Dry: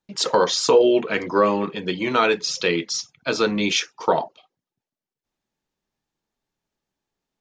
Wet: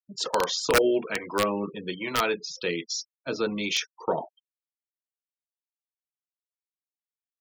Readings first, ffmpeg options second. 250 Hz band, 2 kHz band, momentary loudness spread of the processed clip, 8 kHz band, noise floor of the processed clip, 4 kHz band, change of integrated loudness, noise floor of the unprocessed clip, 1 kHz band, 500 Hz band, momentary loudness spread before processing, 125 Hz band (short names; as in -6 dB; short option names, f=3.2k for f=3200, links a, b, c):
-7.0 dB, -5.0 dB, 10 LU, -5.5 dB, under -85 dBFS, -6.0 dB, -6.5 dB, under -85 dBFS, -7.0 dB, -7.5 dB, 10 LU, -6.5 dB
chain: -filter_complex "[0:a]acrossover=split=600[a][b];[a]aeval=exprs='val(0)*(1-0.5/2+0.5/2*cos(2*PI*1.2*n/s))':c=same[c];[b]aeval=exprs='val(0)*(1-0.5/2-0.5/2*cos(2*PI*1.2*n/s))':c=same[d];[c][d]amix=inputs=2:normalize=0,aeval=exprs='(mod(2.82*val(0)+1,2)-1)/2.82':c=same,afftfilt=real='re*gte(hypot(re,im),0.02)':imag='im*gte(hypot(re,im),0.02)':win_size=1024:overlap=0.75,volume=-5dB"